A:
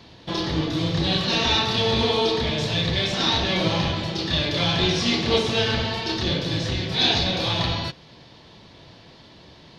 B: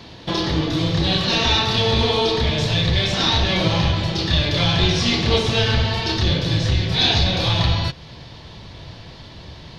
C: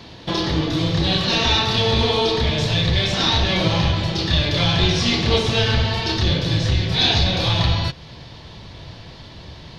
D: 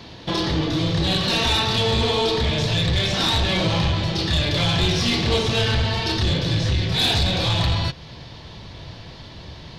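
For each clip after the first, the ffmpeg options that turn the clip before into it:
-filter_complex "[0:a]asubboost=boost=3:cutoff=130,asplit=2[a][b];[b]acompressor=threshold=-29dB:ratio=6,volume=2dB[c];[a][c]amix=inputs=2:normalize=0"
-af anull
-af "asoftclip=type=tanh:threshold=-13dB"

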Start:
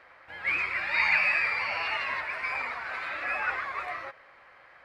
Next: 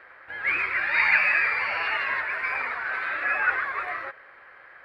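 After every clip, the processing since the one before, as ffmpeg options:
-af "equalizer=f=400:t=o:w=0.67:g=6,equalizer=f=1.6k:t=o:w=0.67:g=9,equalizer=f=6.3k:t=o:w=0.67:g=-8"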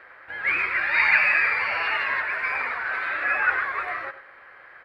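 -filter_complex "[0:a]asplit=2[a][b];[b]adelay=93.29,volume=-13dB,highshelf=f=4k:g=-2.1[c];[a][c]amix=inputs=2:normalize=0,volume=1.5dB"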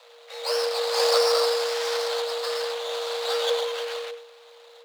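-af "bass=f=250:g=13,treble=f=4k:g=14,aeval=exprs='abs(val(0))':c=same,afreqshift=470,volume=-2.5dB"

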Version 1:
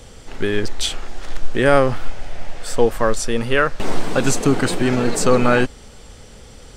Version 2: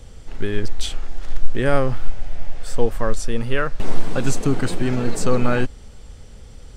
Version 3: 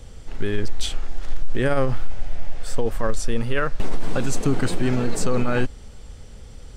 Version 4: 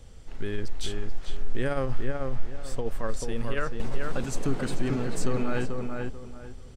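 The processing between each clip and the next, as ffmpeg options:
-af "lowshelf=f=150:g=11,volume=-7dB"
-af "alimiter=limit=-10dB:level=0:latency=1:release=22"
-filter_complex "[0:a]asplit=2[a][b];[b]adelay=438,lowpass=f=2.1k:p=1,volume=-3.5dB,asplit=2[c][d];[d]adelay=438,lowpass=f=2.1k:p=1,volume=0.29,asplit=2[e][f];[f]adelay=438,lowpass=f=2.1k:p=1,volume=0.29,asplit=2[g][h];[h]adelay=438,lowpass=f=2.1k:p=1,volume=0.29[i];[a][c][e][g][i]amix=inputs=5:normalize=0,volume=-7.5dB"

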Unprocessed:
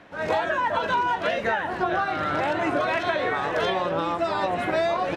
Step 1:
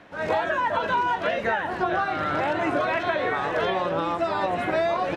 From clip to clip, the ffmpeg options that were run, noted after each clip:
-filter_complex "[0:a]acrossover=split=3200[a][b];[b]acompressor=threshold=-44dB:ratio=4:attack=1:release=60[c];[a][c]amix=inputs=2:normalize=0"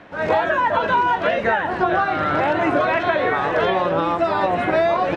-af "lowpass=f=3.7k:p=1,volume=6dB"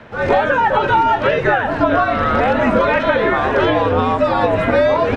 -af "afreqshift=-72,equalizer=f=90:t=o:w=0.77:g=4.5,volume=4dB"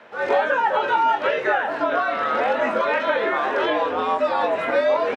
-filter_complex "[0:a]highpass=400,asplit=2[a][b];[b]adelay=23,volume=-7dB[c];[a][c]amix=inputs=2:normalize=0,volume=-5.5dB"

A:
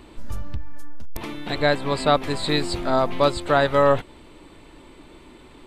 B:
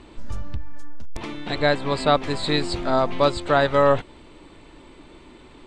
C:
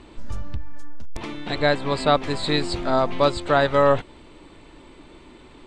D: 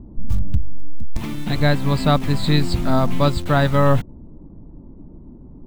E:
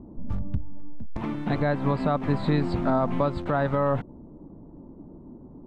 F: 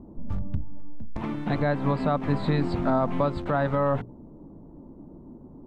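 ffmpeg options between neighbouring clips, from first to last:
-af "lowpass=f=8.3k:w=0.5412,lowpass=f=8.3k:w=1.3066"
-af anull
-filter_complex "[0:a]lowshelf=f=280:t=q:w=1.5:g=10,acrossover=split=790[a][b];[b]acrusher=bits=6:mix=0:aa=0.000001[c];[a][c]amix=inputs=2:normalize=0"
-af "lowpass=1.2k,aemphasis=mode=production:type=bsi,alimiter=limit=-16.5dB:level=0:latency=1:release=111,volume=3dB"
-af "bandreject=f=60:t=h:w=6,bandreject=f=120:t=h:w=6,bandreject=f=180:t=h:w=6,bandreject=f=240:t=h:w=6,bandreject=f=300:t=h:w=6,bandreject=f=360:t=h:w=6,bandreject=f=420:t=h:w=6"

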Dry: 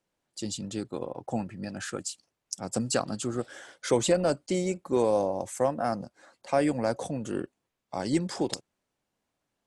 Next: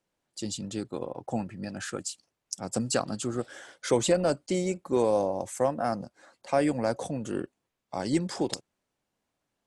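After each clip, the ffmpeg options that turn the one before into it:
-af anull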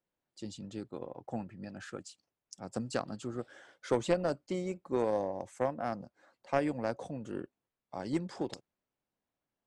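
-af "aemphasis=mode=reproduction:type=50fm,aeval=exprs='0.251*(cos(1*acos(clip(val(0)/0.251,-1,1)))-cos(1*PI/2))+0.0398*(cos(2*acos(clip(val(0)/0.251,-1,1)))-cos(2*PI/2))+0.0316*(cos(3*acos(clip(val(0)/0.251,-1,1)))-cos(3*PI/2))+0.0112*(cos(4*acos(clip(val(0)/0.251,-1,1)))-cos(4*PI/2))':c=same,volume=-4dB"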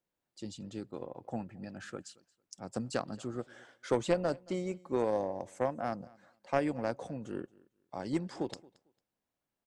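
-af "aecho=1:1:225|450:0.0631|0.0126"

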